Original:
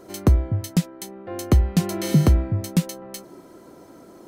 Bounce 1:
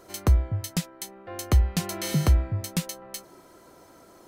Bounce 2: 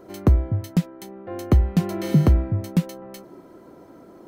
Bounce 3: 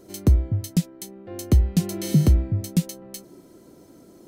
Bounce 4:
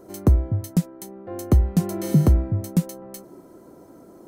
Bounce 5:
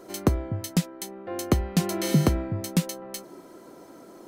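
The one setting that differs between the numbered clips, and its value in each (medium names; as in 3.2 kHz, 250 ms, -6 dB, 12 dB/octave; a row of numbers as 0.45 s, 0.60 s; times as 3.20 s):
peaking EQ, frequency: 250 Hz, 8.3 kHz, 1.1 kHz, 3.1 kHz, 62 Hz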